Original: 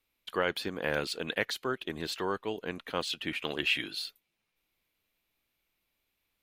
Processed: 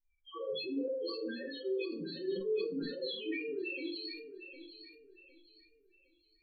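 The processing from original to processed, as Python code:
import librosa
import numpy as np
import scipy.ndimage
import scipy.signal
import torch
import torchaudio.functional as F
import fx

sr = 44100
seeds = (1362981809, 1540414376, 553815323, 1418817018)

y = fx.level_steps(x, sr, step_db=21)
y = fx.spec_topn(y, sr, count=1)
y = fx.echo_thinned(y, sr, ms=758, feedback_pct=35, hz=230.0, wet_db=-10.5)
y = fx.room_shoebox(y, sr, seeds[0], volume_m3=400.0, walls='furnished', distance_m=3.5)
y = fx.sustainer(y, sr, db_per_s=46.0)
y = y * 10.0 ** (8.0 / 20.0)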